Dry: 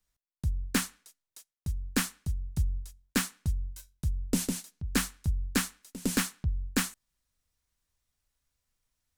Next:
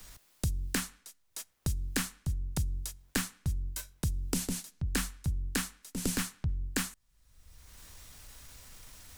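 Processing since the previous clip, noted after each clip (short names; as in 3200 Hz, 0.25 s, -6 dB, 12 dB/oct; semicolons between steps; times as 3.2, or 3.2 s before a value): transient shaper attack -5 dB, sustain 0 dB; three-band squash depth 100%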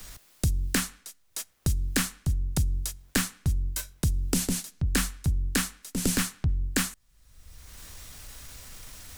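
bell 930 Hz -2.5 dB 0.24 oct; in parallel at -7 dB: overloaded stage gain 28 dB; on the sum: gain +3.5 dB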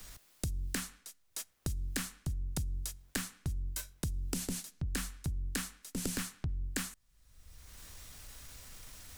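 compressor, threshold -26 dBFS, peak gain reduction 6.5 dB; gain -6 dB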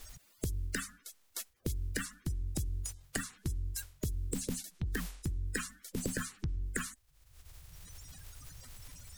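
bin magnitudes rounded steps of 30 dB; shaped vibrato saw up 3.4 Hz, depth 100 cents; gain +1 dB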